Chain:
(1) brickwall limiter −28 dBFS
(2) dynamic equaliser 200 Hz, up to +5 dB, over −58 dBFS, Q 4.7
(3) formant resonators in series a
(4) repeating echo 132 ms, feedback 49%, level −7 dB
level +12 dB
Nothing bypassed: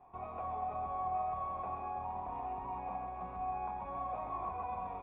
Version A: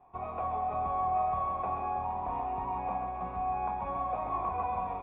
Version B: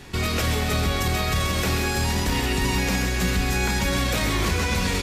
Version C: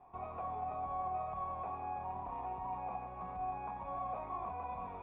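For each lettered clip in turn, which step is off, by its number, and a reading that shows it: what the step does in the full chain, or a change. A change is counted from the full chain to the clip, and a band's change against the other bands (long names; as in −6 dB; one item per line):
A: 1, average gain reduction 6.5 dB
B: 3, 1 kHz band −22.0 dB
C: 4, echo-to-direct ratio −6.0 dB to none audible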